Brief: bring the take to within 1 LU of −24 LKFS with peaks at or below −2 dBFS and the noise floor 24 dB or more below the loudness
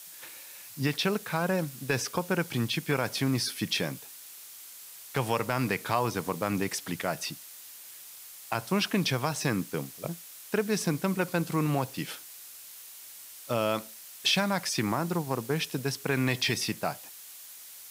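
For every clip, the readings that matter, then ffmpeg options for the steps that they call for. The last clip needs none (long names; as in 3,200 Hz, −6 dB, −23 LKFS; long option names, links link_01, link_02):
background noise floor −47 dBFS; target noise floor −54 dBFS; integrated loudness −30.0 LKFS; sample peak −13.5 dBFS; target loudness −24.0 LKFS
→ -af "afftdn=noise_reduction=7:noise_floor=-47"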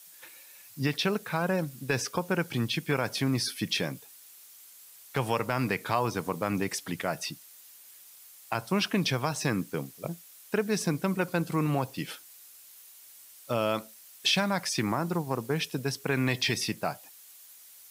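background noise floor −52 dBFS; target noise floor −54 dBFS
→ -af "afftdn=noise_reduction=6:noise_floor=-52"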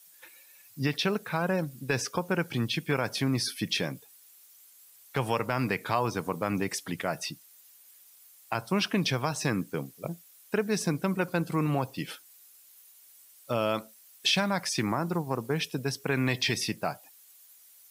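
background noise floor −57 dBFS; integrated loudness −30.0 LKFS; sample peak −13.5 dBFS; target loudness −24.0 LKFS
→ -af "volume=6dB"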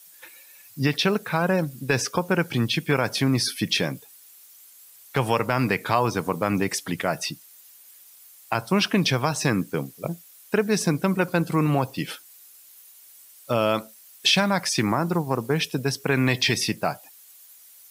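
integrated loudness −24.0 LKFS; sample peak −7.5 dBFS; background noise floor −51 dBFS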